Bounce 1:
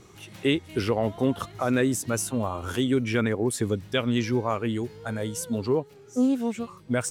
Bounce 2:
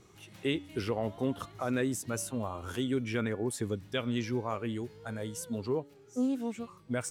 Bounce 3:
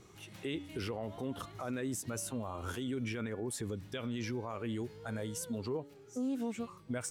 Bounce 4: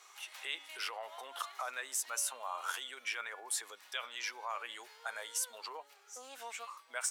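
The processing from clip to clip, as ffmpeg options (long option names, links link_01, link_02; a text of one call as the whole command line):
ffmpeg -i in.wav -af "bandreject=frequency=286.9:width_type=h:width=4,bandreject=frequency=573.8:width_type=h:width=4,bandreject=frequency=860.7:width_type=h:width=4,bandreject=frequency=1147.6:width_type=h:width=4,bandreject=frequency=1434.5:width_type=h:width=4,bandreject=frequency=1721.4:width_type=h:width=4,bandreject=frequency=2008.3:width_type=h:width=4,bandreject=frequency=2295.2:width_type=h:width=4,bandreject=frequency=2582.1:width_type=h:width=4,bandreject=frequency=2869:width_type=h:width=4,bandreject=frequency=3155.9:width_type=h:width=4,bandreject=frequency=3442.8:width_type=h:width=4,volume=-7.5dB" out.wav
ffmpeg -i in.wav -af "alimiter=level_in=6dB:limit=-24dB:level=0:latency=1:release=56,volume=-6dB,volume=1dB" out.wav
ffmpeg -i in.wav -af "highpass=frequency=810:width=0.5412,highpass=frequency=810:width=1.3066,volume=6dB" out.wav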